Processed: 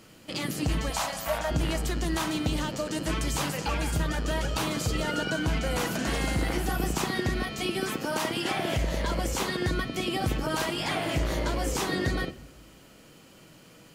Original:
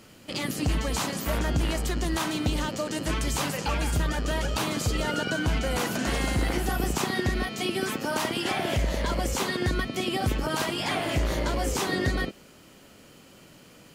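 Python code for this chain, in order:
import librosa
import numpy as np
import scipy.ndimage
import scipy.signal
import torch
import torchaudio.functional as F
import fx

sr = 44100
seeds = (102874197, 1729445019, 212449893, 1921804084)

y = fx.low_shelf_res(x, sr, hz=500.0, db=-8.5, q=3.0, at=(0.9, 1.51))
y = fx.room_shoebox(y, sr, seeds[0], volume_m3=3400.0, walls='furnished', distance_m=0.63)
y = F.gain(torch.from_numpy(y), -1.5).numpy()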